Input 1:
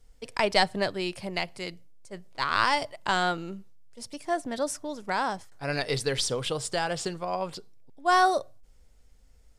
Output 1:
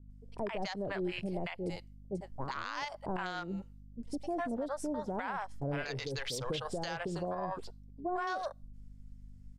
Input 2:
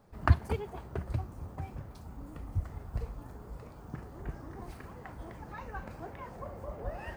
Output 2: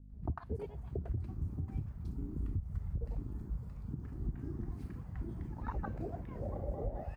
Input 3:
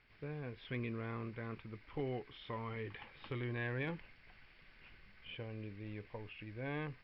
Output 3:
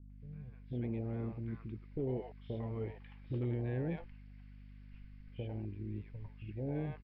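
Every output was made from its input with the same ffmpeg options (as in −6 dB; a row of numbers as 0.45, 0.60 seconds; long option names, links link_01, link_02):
-filter_complex "[0:a]dynaudnorm=framelen=500:gausssize=3:maxgain=8dB,afwtdn=0.0355,aeval=exprs='val(0)+0.00316*(sin(2*PI*50*n/s)+sin(2*PI*2*50*n/s)/2+sin(2*PI*3*50*n/s)/3+sin(2*PI*4*50*n/s)/4+sin(2*PI*5*50*n/s)/5)':channel_layout=same,acrossover=split=640[link_01][link_02];[link_02]adelay=100[link_03];[link_01][link_03]amix=inputs=2:normalize=0,acompressor=threshold=-25dB:ratio=6,alimiter=level_in=1.5dB:limit=-24dB:level=0:latency=1:release=156,volume=-1.5dB,volume=-2dB"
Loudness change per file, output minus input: −10.0, −3.0, +3.0 LU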